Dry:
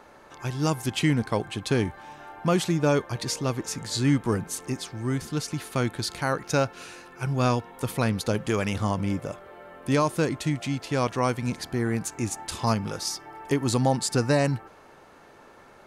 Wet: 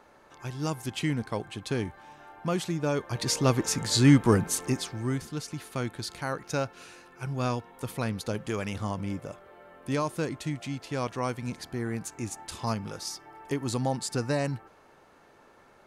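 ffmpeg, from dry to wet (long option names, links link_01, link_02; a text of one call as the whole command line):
ffmpeg -i in.wav -af "volume=4dB,afade=type=in:start_time=2.96:duration=0.51:silence=0.316228,afade=type=out:start_time=4.52:duration=0.79:silence=0.316228" out.wav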